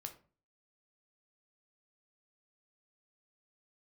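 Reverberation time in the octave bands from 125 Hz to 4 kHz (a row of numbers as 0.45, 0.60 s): 0.55, 0.45, 0.40, 0.35, 0.30, 0.25 s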